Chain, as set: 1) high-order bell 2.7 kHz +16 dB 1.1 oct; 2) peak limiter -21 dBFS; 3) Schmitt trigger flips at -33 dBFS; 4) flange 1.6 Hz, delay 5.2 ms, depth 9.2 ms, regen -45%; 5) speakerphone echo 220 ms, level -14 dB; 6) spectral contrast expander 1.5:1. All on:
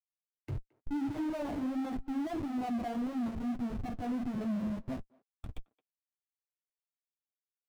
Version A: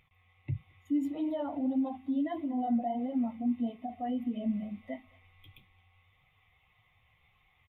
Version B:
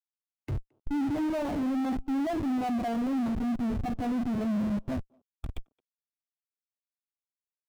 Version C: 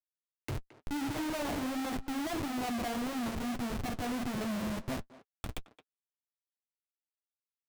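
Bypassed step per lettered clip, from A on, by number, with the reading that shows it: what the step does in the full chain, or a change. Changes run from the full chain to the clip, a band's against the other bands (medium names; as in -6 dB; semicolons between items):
3, distortion 0 dB; 4, crest factor change -3.0 dB; 6, 4 kHz band +10.0 dB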